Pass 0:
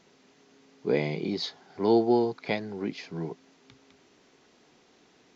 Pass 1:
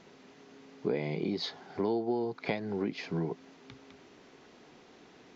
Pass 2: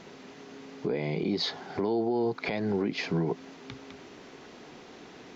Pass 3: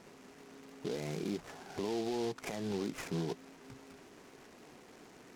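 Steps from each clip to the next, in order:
low-pass 3.2 kHz 6 dB/octave; compression 6:1, threshold -34 dBFS, peak gain reduction 16 dB; trim +5.5 dB
peak limiter -28 dBFS, peak gain reduction 11 dB; trim +8 dB
CVSD coder 16 kbps; delay time shaken by noise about 3.8 kHz, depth 0.059 ms; trim -7.5 dB

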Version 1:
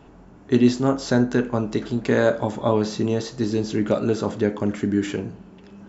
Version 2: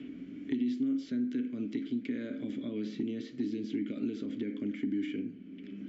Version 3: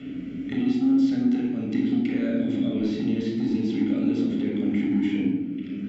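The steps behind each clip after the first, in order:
peak limiter -14.5 dBFS, peak gain reduction 9 dB; vowel filter i; three bands compressed up and down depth 70%
in parallel at -10.5 dB: overload inside the chain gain 33.5 dB; on the sum: simulated room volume 4000 m³, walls furnished, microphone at 6.8 m; trim +3 dB

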